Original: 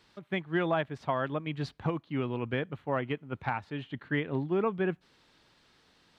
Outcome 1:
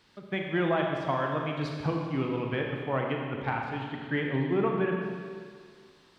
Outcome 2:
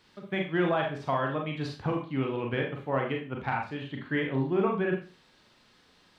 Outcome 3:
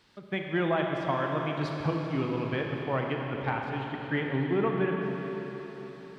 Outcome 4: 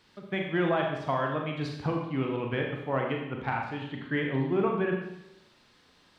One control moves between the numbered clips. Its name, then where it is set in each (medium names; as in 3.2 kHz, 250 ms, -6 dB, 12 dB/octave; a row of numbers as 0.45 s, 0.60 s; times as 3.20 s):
Schroeder reverb, RT60: 2 s, 0.35 s, 4.6 s, 0.84 s